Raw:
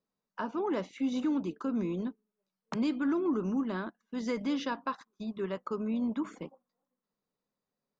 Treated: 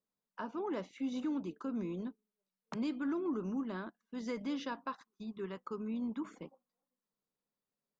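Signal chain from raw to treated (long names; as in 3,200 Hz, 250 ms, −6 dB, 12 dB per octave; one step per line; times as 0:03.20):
0:05.07–0:06.22: parametric band 620 Hz −11.5 dB 0.23 octaves
level −6 dB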